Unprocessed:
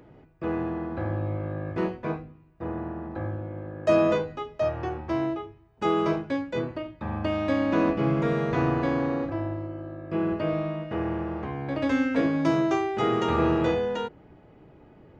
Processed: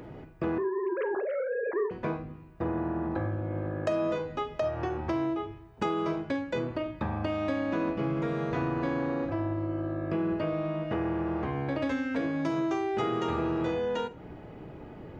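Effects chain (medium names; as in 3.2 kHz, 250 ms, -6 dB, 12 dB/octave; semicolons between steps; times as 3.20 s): 0.58–1.91 s: formants replaced by sine waves; compression 6:1, threshold -36 dBFS, peak gain reduction 18 dB; Schroeder reverb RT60 0.3 s, combs from 33 ms, DRR 13 dB; trim +7.5 dB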